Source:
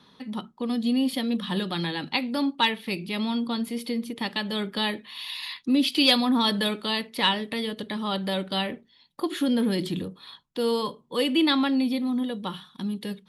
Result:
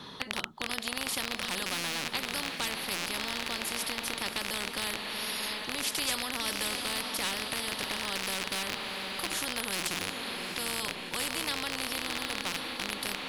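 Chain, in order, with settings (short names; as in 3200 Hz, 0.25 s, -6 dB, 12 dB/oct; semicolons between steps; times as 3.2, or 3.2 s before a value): rattling part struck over -40 dBFS, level -19 dBFS; diffused feedback echo 0.691 s, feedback 45%, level -12.5 dB; spectral compressor 4:1; gain -5 dB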